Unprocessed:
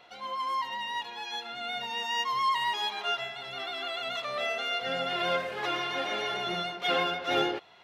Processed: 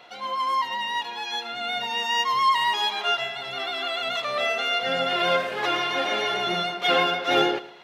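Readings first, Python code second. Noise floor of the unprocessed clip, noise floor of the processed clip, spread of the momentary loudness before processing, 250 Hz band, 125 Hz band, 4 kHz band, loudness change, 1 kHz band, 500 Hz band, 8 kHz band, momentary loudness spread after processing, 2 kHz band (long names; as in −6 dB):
−46 dBFS, −39 dBFS, 8 LU, +6.0 dB, +5.0 dB, +6.5 dB, +6.5 dB, +6.5 dB, +6.5 dB, +6.5 dB, 8 LU, +6.5 dB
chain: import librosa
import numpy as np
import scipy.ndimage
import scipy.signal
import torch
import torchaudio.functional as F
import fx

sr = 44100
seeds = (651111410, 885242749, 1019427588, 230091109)

p1 = scipy.signal.sosfilt(scipy.signal.butter(2, 51.0, 'highpass', fs=sr, output='sos'), x)
p2 = fx.peak_eq(p1, sr, hz=78.0, db=-8.5, octaves=0.92)
p3 = p2 + fx.echo_feedback(p2, sr, ms=110, feedback_pct=32, wet_db=-17.5, dry=0)
y = F.gain(torch.from_numpy(p3), 6.5).numpy()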